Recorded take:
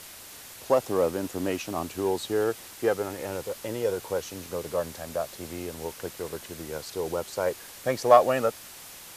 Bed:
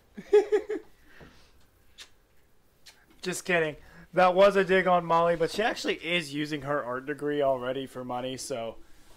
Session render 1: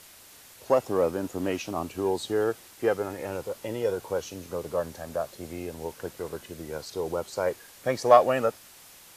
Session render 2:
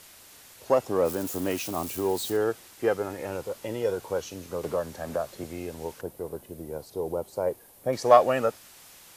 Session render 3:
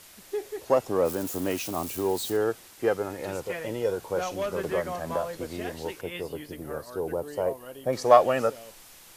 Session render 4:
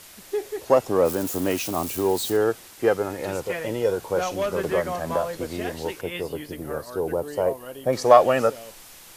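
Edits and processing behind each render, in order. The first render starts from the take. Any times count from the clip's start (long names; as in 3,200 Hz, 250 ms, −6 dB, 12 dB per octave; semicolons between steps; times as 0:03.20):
noise reduction from a noise print 6 dB
0:01.05–0:02.37: spike at every zero crossing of −30.5 dBFS; 0:04.63–0:05.44: multiband upward and downward compressor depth 70%; 0:06.01–0:07.93: flat-topped bell 3,000 Hz −11 dB 3 octaves
mix in bed −11.5 dB
level +4.5 dB; brickwall limiter −2 dBFS, peak gain reduction 2.5 dB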